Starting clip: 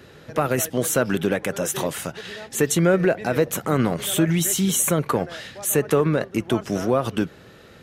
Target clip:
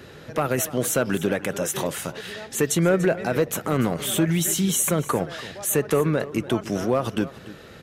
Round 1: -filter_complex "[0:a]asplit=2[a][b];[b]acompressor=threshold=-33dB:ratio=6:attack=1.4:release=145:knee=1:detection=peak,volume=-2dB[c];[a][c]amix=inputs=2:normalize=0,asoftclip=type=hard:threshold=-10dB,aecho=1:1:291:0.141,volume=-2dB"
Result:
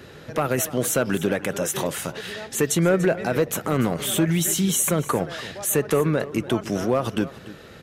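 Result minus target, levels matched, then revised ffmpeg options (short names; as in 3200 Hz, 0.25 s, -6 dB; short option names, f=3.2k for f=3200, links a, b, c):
compressor: peak gain reduction -6.5 dB
-filter_complex "[0:a]asplit=2[a][b];[b]acompressor=threshold=-41dB:ratio=6:attack=1.4:release=145:knee=1:detection=peak,volume=-2dB[c];[a][c]amix=inputs=2:normalize=0,asoftclip=type=hard:threshold=-10dB,aecho=1:1:291:0.141,volume=-2dB"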